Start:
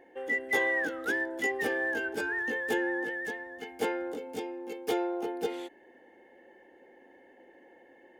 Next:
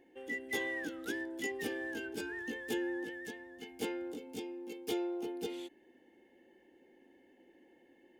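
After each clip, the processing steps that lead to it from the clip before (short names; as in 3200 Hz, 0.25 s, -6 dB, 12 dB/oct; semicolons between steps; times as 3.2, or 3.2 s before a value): band shelf 950 Hz -10 dB 2.4 oct; gain -2 dB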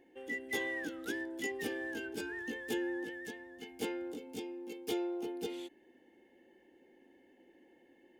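nothing audible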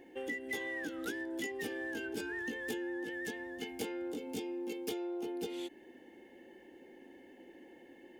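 compressor 10:1, threshold -44 dBFS, peak gain reduction 13.5 dB; gain +8 dB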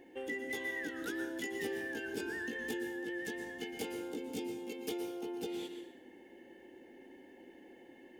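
plate-style reverb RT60 0.76 s, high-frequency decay 0.8×, pre-delay 0.105 s, DRR 6 dB; gain -1 dB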